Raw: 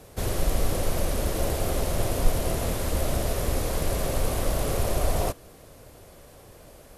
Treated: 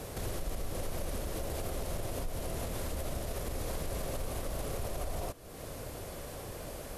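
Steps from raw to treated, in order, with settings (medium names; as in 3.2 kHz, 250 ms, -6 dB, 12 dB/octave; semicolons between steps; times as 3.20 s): compression 3:1, threshold -42 dBFS, peak gain reduction 21.5 dB; peak limiter -33.5 dBFS, peak gain reduction 7 dB; trim +6.5 dB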